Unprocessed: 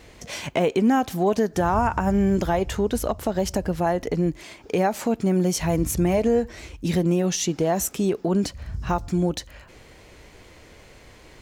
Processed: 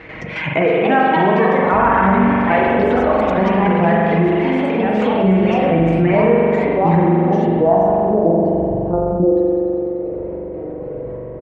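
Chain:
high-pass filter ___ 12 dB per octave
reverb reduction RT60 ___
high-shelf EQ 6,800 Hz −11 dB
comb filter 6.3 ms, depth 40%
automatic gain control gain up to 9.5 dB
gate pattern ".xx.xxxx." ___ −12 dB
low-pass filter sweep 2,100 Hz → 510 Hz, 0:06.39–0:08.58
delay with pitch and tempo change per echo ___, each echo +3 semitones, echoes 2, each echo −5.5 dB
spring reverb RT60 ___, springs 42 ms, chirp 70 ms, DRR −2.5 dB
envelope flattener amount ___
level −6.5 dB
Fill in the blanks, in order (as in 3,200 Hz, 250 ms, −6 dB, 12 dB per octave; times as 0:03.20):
67 Hz, 1.2 s, 168 BPM, 371 ms, 2.2 s, 50%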